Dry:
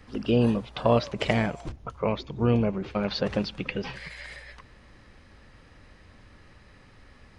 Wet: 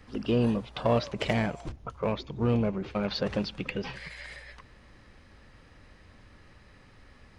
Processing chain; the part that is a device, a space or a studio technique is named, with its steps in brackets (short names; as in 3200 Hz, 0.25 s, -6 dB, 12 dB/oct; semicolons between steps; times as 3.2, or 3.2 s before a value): parallel distortion (in parallel at -4 dB: hard clip -22 dBFS, distortion -9 dB); on the sum: gain -6 dB